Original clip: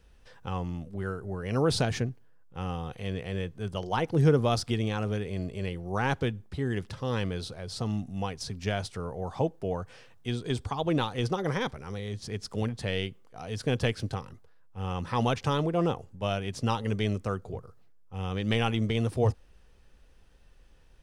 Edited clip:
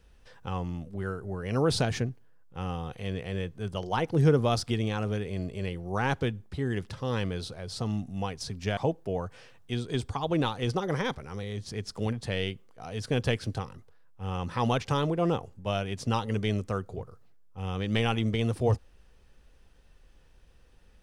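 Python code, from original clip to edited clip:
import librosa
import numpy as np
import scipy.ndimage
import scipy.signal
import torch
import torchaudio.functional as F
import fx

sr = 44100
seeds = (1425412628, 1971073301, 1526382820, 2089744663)

y = fx.edit(x, sr, fx.cut(start_s=8.77, length_s=0.56), tone=tone)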